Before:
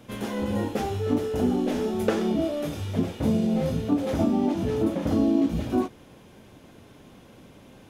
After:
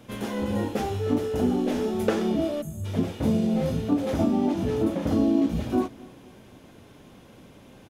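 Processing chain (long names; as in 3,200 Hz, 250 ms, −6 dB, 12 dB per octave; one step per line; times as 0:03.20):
time-frequency box erased 0:02.62–0:02.85, 250–6,300 Hz
on a send: repeating echo 251 ms, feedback 52%, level −23 dB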